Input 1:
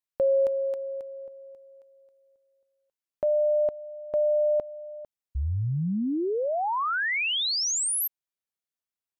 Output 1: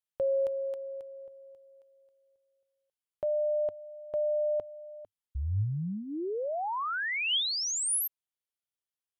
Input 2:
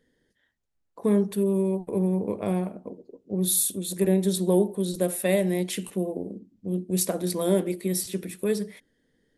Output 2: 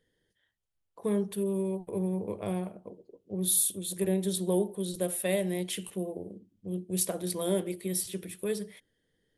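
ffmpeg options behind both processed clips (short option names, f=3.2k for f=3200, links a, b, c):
-af "equalizer=f=100:t=o:w=0.33:g=6,equalizer=f=250:t=o:w=0.33:g=-9,equalizer=f=3.15k:t=o:w=0.33:g=6,equalizer=f=10k:t=o:w=0.33:g=5,volume=-5.5dB"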